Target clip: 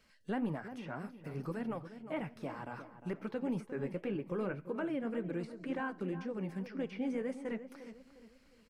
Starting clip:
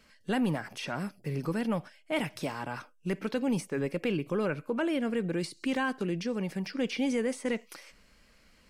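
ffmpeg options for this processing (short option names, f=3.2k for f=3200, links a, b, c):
-filter_complex "[0:a]acrossover=split=2100[a][b];[b]acompressor=threshold=-57dB:ratio=6[c];[a][c]amix=inputs=2:normalize=0,flanger=delay=1.6:depth=9.9:regen=-52:speed=1.9:shape=triangular,asplit=2[d][e];[e]adelay=354,lowpass=f=1.6k:p=1,volume=-11dB,asplit=2[f][g];[g]adelay=354,lowpass=f=1.6k:p=1,volume=0.4,asplit=2[h][i];[i]adelay=354,lowpass=f=1.6k:p=1,volume=0.4,asplit=2[j][k];[k]adelay=354,lowpass=f=1.6k:p=1,volume=0.4[l];[d][f][h][j][l]amix=inputs=5:normalize=0,volume=-3dB"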